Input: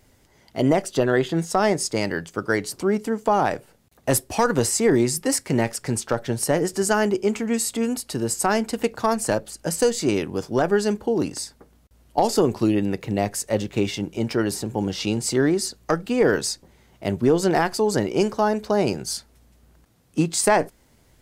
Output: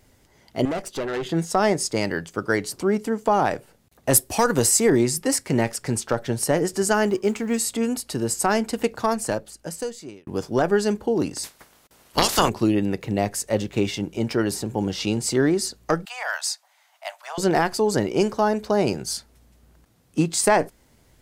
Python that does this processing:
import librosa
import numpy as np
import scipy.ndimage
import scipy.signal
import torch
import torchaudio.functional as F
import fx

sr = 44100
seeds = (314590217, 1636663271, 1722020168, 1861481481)

y = fx.tube_stage(x, sr, drive_db=23.0, bias=0.65, at=(0.65, 1.26))
y = fx.high_shelf(y, sr, hz=7400.0, db=9.5, at=(4.13, 4.9))
y = fx.law_mismatch(y, sr, coded='A', at=(7.07, 7.58))
y = fx.spec_clip(y, sr, under_db=28, at=(11.43, 12.48), fade=0.02)
y = fx.steep_highpass(y, sr, hz=640.0, slope=72, at=(16.05, 17.38))
y = fx.edit(y, sr, fx.fade_out_span(start_s=8.93, length_s=1.34), tone=tone)